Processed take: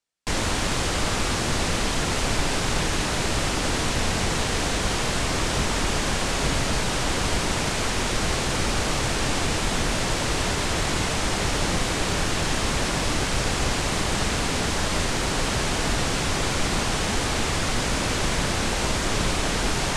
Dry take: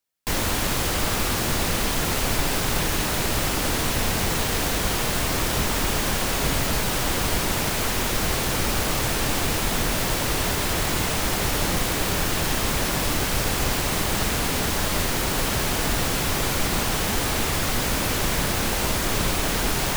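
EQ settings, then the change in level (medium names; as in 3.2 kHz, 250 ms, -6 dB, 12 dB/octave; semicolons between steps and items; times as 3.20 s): low-pass 9 kHz 24 dB/octave; 0.0 dB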